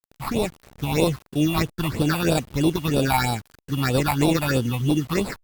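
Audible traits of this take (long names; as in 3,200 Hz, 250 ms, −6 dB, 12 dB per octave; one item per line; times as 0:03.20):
aliases and images of a low sample rate 3,100 Hz, jitter 0%
phaser sweep stages 6, 3.1 Hz, lowest notch 410–1,900 Hz
a quantiser's noise floor 8 bits, dither none
Opus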